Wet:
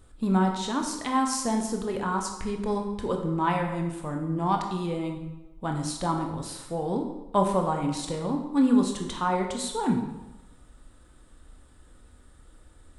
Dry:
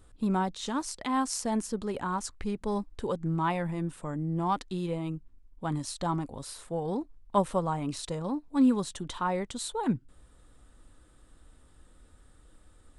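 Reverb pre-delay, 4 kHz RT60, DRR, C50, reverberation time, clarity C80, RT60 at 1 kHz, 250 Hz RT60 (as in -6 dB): 18 ms, 0.80 s, 2.5 dB, 5.5 dB, 1.0 s, 8.0 dB, 1.0 s, 0.95 s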